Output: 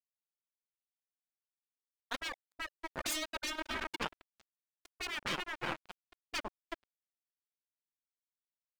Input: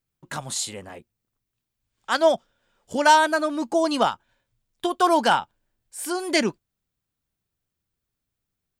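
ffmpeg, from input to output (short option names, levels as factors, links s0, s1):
-filter_complex "[0:a]bandreject=f=60:t=h:w=6,bandreject=f=120:t=h:w=6,bandreject=f=180:t=h:w=6,bandreject=f=240:t=h:w=6,bandreject=f=300:t=h:w=6,bandreject=f=360:t=h:w=6,aecho=1:1:370|592|725.2|805.1|853.1:0.631|0.398|0.251|0.158|0.1,aeval=exprs='0.668*(cos(1*acos(clip(val(0)/0.668,-1,1)))-cos(1*PI/2))+0.0596*(cos(2*acos(clip(val(0)/0.668,-1,1)))-cos(2*PI/2))+0.133*(cos(3*acos(clip(val(0)/0.668,-1,1)))-cos(3*PI/2))+0.0668*(cos(4*acos(clip(val(0)/0.668,-1,1)))-cos(4*PI/2))':c=same,asettb=1/sr,asplit=3[s0][s1][s2];[s0]atrim=end=2.994[s3];[s1]atrim=start=2.99:end=5,asetpts=PTS-STARTPTS,afade=t=in:d=0.004:c=qsin,afade=t=out:st=2.006:d=0.004:c=qsin,tiltshelf=f=1400:g=-6[s4];[s2]atrim=start=4.996[s5];[s3][s4]acrossfade=d=0.004:c1=hsin:c2=qsin[s6];[s6][s5]acrossfade=d=0.004:c1=qsin:c2=hsin,afftfilt=real='re*gte(hypot(re,im),0.126)':imag='im*gte(hypot(re,im),0.126)':win_size=1024:overlap=0.75,aeval=exprs='sgn(val(0))*max(abs(val(0))-0.0398,0)':c=same,afftfilt=real='re*lt(hypot(re,im),0.0631)':imag='im*lt(hypot(re,im),0.0631)':win_size=1024:overlap=0.75,adynamicequalizer=threshold=0.00224:dfrequency=3800:dqfactor=0.7:tfrequency=3800:tqfactor=0.7:attack=5:release=100:ratio=0.375:range=2.5:mode=cutabove:tftype=highshelf,volume=1.58"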